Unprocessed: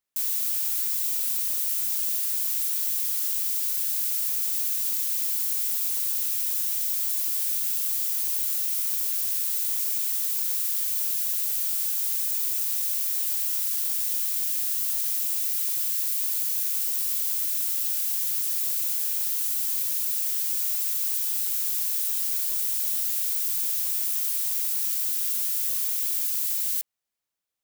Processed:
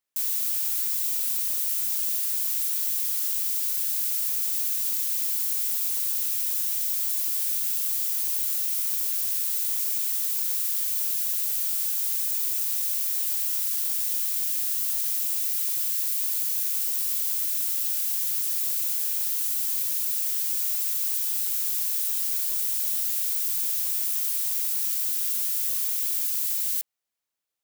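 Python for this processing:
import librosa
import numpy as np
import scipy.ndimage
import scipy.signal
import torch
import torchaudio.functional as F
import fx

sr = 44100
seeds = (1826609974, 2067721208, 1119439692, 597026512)

y = fx.low_shelf(x, sr, hz=190.0, db=-4.5)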